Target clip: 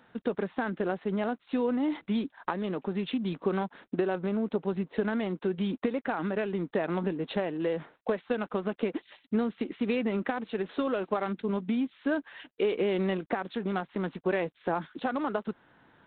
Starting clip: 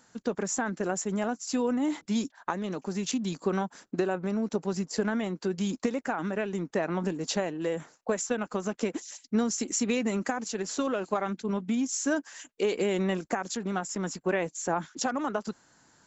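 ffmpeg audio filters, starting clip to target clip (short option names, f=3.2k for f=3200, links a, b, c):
-af "equalizer=f=430:w=1.5:g=2.5,acompressor=threshold=-36dB:ratio=1.5,volume=3dB" -ar 8000 -c:a adpcm_g726 -b:a 32k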